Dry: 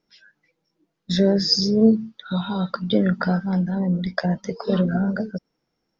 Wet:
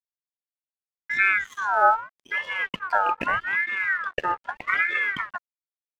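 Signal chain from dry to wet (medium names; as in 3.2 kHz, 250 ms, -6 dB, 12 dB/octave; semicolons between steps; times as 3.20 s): Savitzky-Golay filter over 41 samples; crossover distortion -40.5 dBFS; ring modulator with a swept carrier 1.5 kHz, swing 30%, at 0.81 Hz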